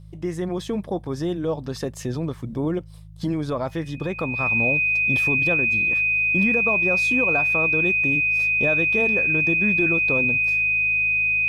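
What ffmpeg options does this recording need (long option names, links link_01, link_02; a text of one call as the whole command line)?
ffmpeg -i in.wav -af "bandreject=frequency=53.1:width_type=h:width=4,bandreject=frequency=106.2:width_type=h:width=4,bandreject=frequency=159.3:width_type=h:width=4,bandreject=frequency=2500:width=30" out.wav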